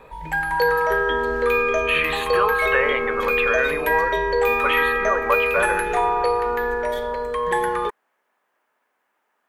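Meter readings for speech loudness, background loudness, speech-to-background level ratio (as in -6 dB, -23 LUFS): -24.0 LUFS, -21.0 LUFS, -3.0 dB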